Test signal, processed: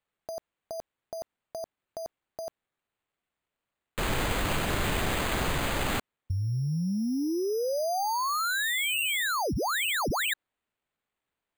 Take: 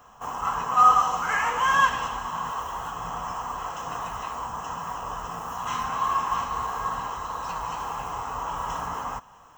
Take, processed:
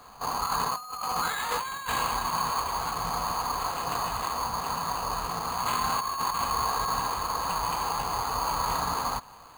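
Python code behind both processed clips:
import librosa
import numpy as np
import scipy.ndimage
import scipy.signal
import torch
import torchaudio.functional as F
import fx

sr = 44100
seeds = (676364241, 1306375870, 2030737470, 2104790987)

y = fx.over_compress(x, sr, threshold_db=-29.0, ratio=-1.0)
y = np.repeat(y[::8], 8)[:len(y)]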